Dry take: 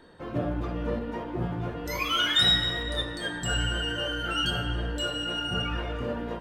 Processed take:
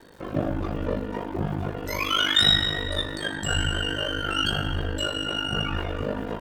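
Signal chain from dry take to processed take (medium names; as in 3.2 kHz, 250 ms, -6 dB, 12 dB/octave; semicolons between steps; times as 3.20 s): ring modulator 25 Hz; crackle 170 per s -49 dBFS; trim +5.5 dB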